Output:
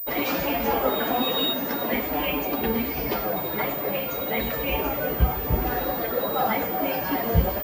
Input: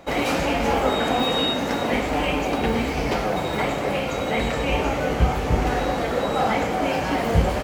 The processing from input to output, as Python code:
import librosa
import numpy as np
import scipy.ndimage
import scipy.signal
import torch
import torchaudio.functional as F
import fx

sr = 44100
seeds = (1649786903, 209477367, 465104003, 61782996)

y = fx.bin_expand(x, sr, power=1.5)
y = fx.pwm(y, sr, carrier_hz=15000.0)